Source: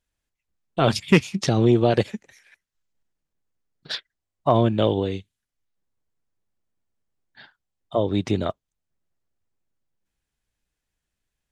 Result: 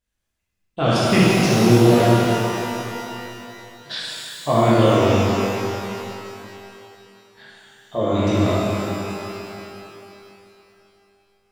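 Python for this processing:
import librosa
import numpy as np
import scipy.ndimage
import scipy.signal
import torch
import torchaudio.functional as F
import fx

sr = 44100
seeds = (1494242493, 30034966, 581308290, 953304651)

p1 = 10.0 ** (-11.0 / 20.0) * np.tanh(x / 10.0 ** (-11.0 / 20.0))
p2 = x + F.gain(torch.from_numpy(p1), -5.5).numpy()
p3 = fx.rev_shimmer(p2, sr, seeds[0], rt60_s=2.9, semitones=12, shimmer_db=-8, drr_db=-9.0)
y = F.gain(torch.from_numpy(p3), -8.0).numpy()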